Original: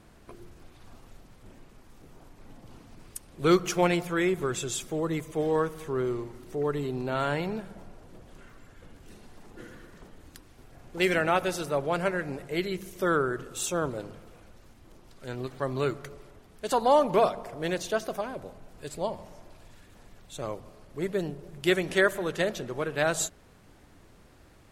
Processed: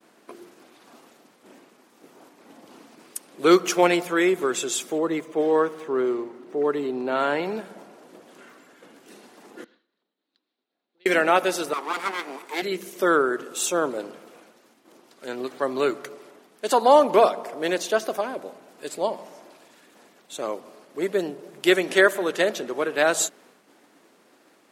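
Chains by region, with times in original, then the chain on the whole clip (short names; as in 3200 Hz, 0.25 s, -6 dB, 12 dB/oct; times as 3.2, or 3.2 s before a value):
4.98–7.46 median filter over 3 samples + high shelf 4800 Hz -8 dB + mismatched tape noise reduction decoder only
9.64–11.06 resonant low shelf 140 Hz -9 dB, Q 1.5 + compressor 5:1, threshold -51 dBFS + ladder low-pass 4300 Hz, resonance 70%
11.73–12.62 minimum comb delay 0.87 ms + HPF 230 Hz 24 dB/oct + low shelf 400 Hz -4.5 dB
whole clip: HPF 240 Hz 24 dB/oct; expander -55 dBFS; gain +6 dB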